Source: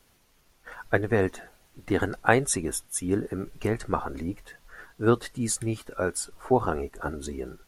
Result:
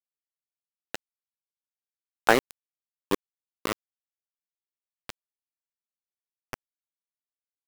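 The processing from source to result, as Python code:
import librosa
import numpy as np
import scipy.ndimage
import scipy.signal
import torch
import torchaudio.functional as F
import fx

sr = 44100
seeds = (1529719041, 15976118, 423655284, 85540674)

y = scipy.signal.sosfilt(scipy.signal.ellip(4, 1.0, 50, 170.0, 'highpass', fs=sr, output='sos'), x)
y = fx.spec_box(y, sr, start_s=2.2, length_s=1.55, low_hz=240.0, high_hz=6900.0, gain_db=10)
y = np.where(np.abs(y) >= 10.0 ** (-9.5 / 20.0), y, 0.0)
y = y * 10.0 ** (-8.0 / 20.0)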